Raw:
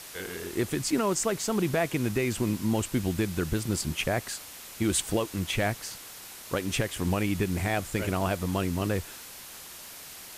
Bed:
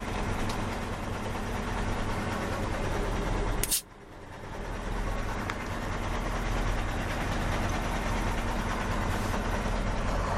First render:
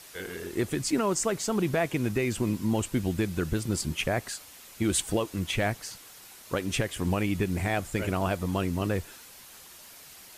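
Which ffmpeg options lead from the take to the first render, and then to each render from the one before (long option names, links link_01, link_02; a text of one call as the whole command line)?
ffmpeg -i in.wav -af "afftdn=noise_reduction=6:noise_floor=-45" out.wav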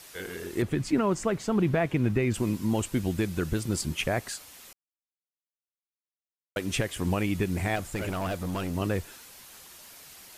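ffmpeg -i in.wav -filter_complex "[0:a]asettb=1/sr,asplit=3[link_01][link_02][link_03];[link_01]atrim=end=0.624[link_04];[link_02]atrim=start=0.62:end=2.34,asetpts=PTS-STARTPTS,afade=type=in:duration=0.004:curve=qsin,afade=type=out:start_time=1.716:duration=0.004:curve=qsin,bass=frequency=250:gain=5,treble=frequency=4000:gain=-11[link_05];[link_03]atrim=start=2.336[link_06];[link_04][link_05]acrossfade=duration=0.004:curve1=hsin:curve2=qsin[link_07];[link_07][link_06]acrossfade=duration=0.004:curve1=qsin:curve2=hsin,asettb=1/sr,asplit=3[link_08][link_09][link_10];[link_08]atrim=end=7.764[link_11];[link_09]atrim=start=7.76:end=8.75,asetpts=PTS-STARTPTS,afade=type=in:duration=0.004:curve=qsin,afade=type=out:start_time=0.986:duration=0.004:curve=qsin,volume=26.5dB,asoftclip=hard,volume=-26.5dB[link_12];[link_10]atrim=start=8.746[link_13];[link_11][link_12]acrossfade=duration=0.004:curve1=hsin:curve2=qsin[link_14];[link_14][link_13]acrossfade=duration=0.004:curve1=qsin:curve2=hsin,asplit=3[link_15][link_16][link_17];[link_15]atrim=end=4.73,asetpts=PTS-STARTPTS,afade=type=out:start_time=4.726:duration=0.004:curve=hsin[link_18];[link_16]atrim=start=4.73:end=6.56,asetpts=PTS-STARTPTS,volume=0[link_19];[link_17]atrim=start=6.56,asetpts=PTS-STARTPTS,afade=type=in:duration=0.004:curve=hsin[link_20];[link_18][link_19][link_20]concat=n=3:v=0:a=1" out.wav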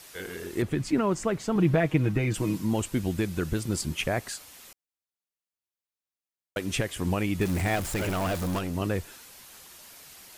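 ffmpeg -i in.wav -filter_complex "[0:a]asettb=1/sr,asplit=3[link_01][link_02][link_03];[link_01]atrim=end=1.554[link_04];[link_02]atrim=start=1.55:end=2.62,asetpts=PTS-STARTPTS,afade=type=in:duration=0.004:curve=qsin,afade=type=out:start_time=1.066:duration=0.004:curve=qsin,aecho=1:1:6.4:0.62,atrim=end_sample=47187[link_05];[link_03]atrim=start=2.616[link_06];[link_04][link_05]acrossfade=duration=0.004:curve1=hsin:curve2=qsin[link_07];[link_07][link_06]acrossfade=duration=0.004:curve1=qsin:curve2=hsin,asettb=1/sr,asplit=3[link_08][link_09][link_10];[link_08]atrim=end=7.414[link_11];[link_09]atrim=start=7.41:end=8.59,asetpts=PTS-STARTPTS,afade=type=in:duration=0.004:curve=qsin,afade=type=out:start_time=1.176:duration=0.004:curve=qsin,aeval=exprs='val(0)+0.5*0.0266*sgn(val(0))':channel_layout=same[link_12];[link_10]atrim=start=8.586[link_13];[link_11][link_12]acrossfade=duration=0.004:curve1=hsin:curve2=qsin[link_14];[link_14][link_13]acrossfade=duration=0.004:curve1=qsin:curve2=hsin" out.wav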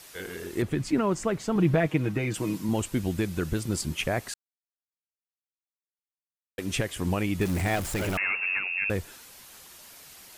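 ffmpeg -i in.wav -filter_complex "[0:a]asettb=1/sr,asplit=3[link_01][link_02][link_03];[link_01]atrim=end=1.874[link_04];[link_02]atrim=start=1.87:end=2.69,asetpts=PTS-STARTPTS,afade=type=in:duration=0.004:curve=qsin,afade=type=out:start_time=0.816:duration=0.004:curve=qsin,highpass=frequency=150:poles=1[link_05];[link_03]atrim=start=2.686[link_06];[link_04][link_05]acrossfade=duration=0.004:curve1=hsin:curve2=qsin[link_07];[link_07][link_06]acrossfade=duration=0.004:curve1=qsin:curve2=hsin,asettb=1/sr,asplit=3[link_08][link_09][link_10];[link_08]atrim=end=8.174[link_11];[link_09]atrim=start=8.17:end=8.9,asetpts=PTS-STARTPTS,afade=type=in:duration=0.004:curve=qsin,afade=type=out:start_time=0.726:duration=0.004:curve=qsin,lowpass=frequency=2400:width_type=q:width=0.5098,lowpass=frequency=2400:width_type=q:width=0.6013,lowpass=frequency=2400:width_type=q:width=0.9,lowpass=frequency=2400:width_type=q:width=2.563,afreqshift=-2800[link_12];[link_10]atrim=start=8.896[link_13];[link_11][link_12]acrossfade=duration=0.004:curve1=hsin:curve2=qsin[link_14];[link_14][link_13]acrossfade=duration=0.004:curve1=qsin:curve2=hsin,asplit=3[link_15][link_16][link_17];[link_15]atrim=end=4.34,asetpts=PTS-STARTPTS,afade=type=out:start_time=4.336:duration=0.004:curve=hsin[link_18];[link_16]atrim=start=4.34:end=6.58,asetpts=PTS-STARTPTS,volume=0[link_19];[link_17]atrim=start=6.58,asetpts=PTS-STARTPTS,afade=type=in:duration=0.004:curve=hsin[link_20];[link_18][link_19][link_20]concat=n=3:v=0:a=1" out.wav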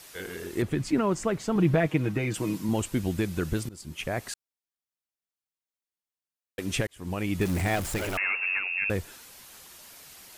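ffmpeg -i in.wav -filter_complex "[0:a]asettb=1/sr,asplit=3[link_01][link_02][link_03];[link_01]atrim=end=7.984[link_04];[link_02]atrim=start=7.98:end=8.71,asetpts=PTS-STARTPTS,afade=type=in:duration=0.004:curve=qsin,afade=type=out:start_time=0.726:duration=0.004:curve=qsin,equalizer=frequency=150:width_type=o:width=1.2:gain=-11[link_05];[link_03]atrim=start=8.706[link_06];[link_04][link_05]acrossfade=duration=0.004:curve1=hsin:curve2=qsin[link_07];[link_07][link_06]acrossfade=duration=0.004:curve1=qsin:curve2=hsin,asplit=3[link_08][link_09][link_10];[link_08]atrim=end=3.69,asetpts=PTS-STARTPTS,afade=type=out:start_time=3.686:duration=0.004:curve=hsin:silence=0.0668344[link_11];[link_09]atrim=start=3.69:end=6.87,asetpts=PTS-STARTPTS,afade=type=in:duration=0.63:silence=0.0668344,afade=type=out:start_time=3.176:duration=0.004:curve=hsin[link_12];[link_10]atrim=start=6.87,asetpts=PTS-STARTPTS,afade=type=in:duration=0.47[link_13];[link_11][link_12][link_13]concat=n=3:v=0:a=1" out.wav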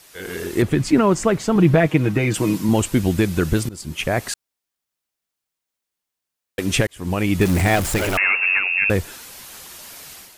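ffmpeg -i in.wav -af "dynaudnorm=framelen=100:gausssize=5:maxgain=10dB" out.wav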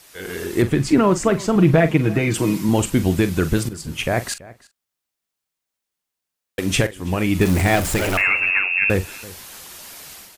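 ffmpeg -i in.wav -filter_complex "[0:a]asplit=2[link_01][link_02];[link_02]adelay=43,volume=-12.5dB[link_03];[link_01][link_03]amix=inputs=2:normalize=0,asplit=2[link_04][link_05];[link_05]adelay=332.4,volume=-20dB,highshelf=frequency=4000:gain=-7.48[link_06];[link_04][link_06]amix=inputs=2:normalize=0" out.wav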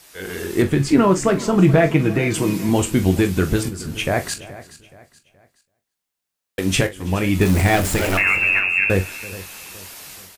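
ffmpeg -i in.wav -filter_complex "[0:a]asplit=2[link_01][link_02];[link_02]adelay=21,volume=-8.5dB[link_03];[link_01][link_03]amix=inputs=2:normalize=0,aecho=1:1:424|848|1272:0.133|0.0493|0.0183" out.wav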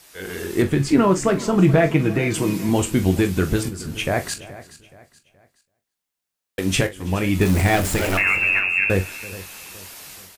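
ffmpeg -i in.wav -af "volume=-1.5dB" out.wav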